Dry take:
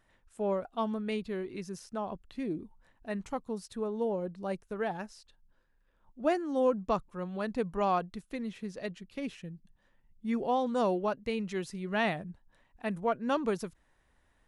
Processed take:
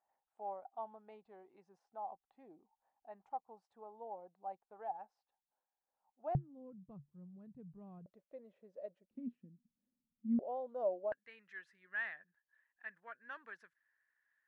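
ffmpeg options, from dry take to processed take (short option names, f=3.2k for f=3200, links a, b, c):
-af "asetnsamples=n=441:p=0,asendcmd='6.35 bandpass f 140;8.06 bandpass f 580;9.11 bandpass f 240;10.39 bandpass f 600;11.12 bandpass f 1700',bandpass=f=790:t=q:w=9.3:csg=0"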